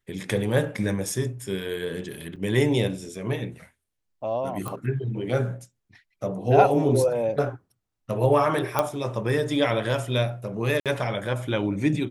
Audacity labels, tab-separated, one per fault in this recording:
2.360000	2.370000	dropout 5.9 ms
4.680000	4.680000	pop -18 dBFS
8.790000	8.790000	pop -8 dBFS
10.800000	10.860000	dropout 57 ms

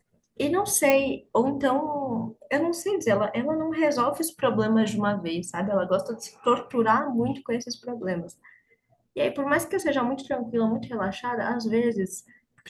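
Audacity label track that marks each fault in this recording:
0.900000	0.900000	pop -8 dBFS

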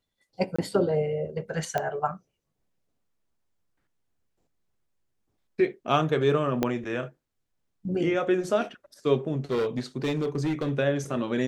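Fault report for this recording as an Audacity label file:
0.560000	0.580000	dropout 25 ms
1.780000	1.780000	pop -14 dBFS
6.630000	6.630000	pop -11 dBFS
9.500000	10.700000	clipped -22.5 dBFS

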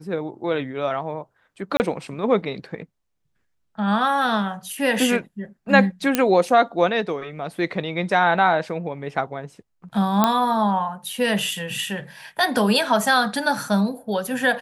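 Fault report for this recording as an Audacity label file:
1.770000	1.800000	dropout 29 ms
6.150000	6.150000	pop -3 dBFS
10.240000	10.240000	pop -3 dBFS

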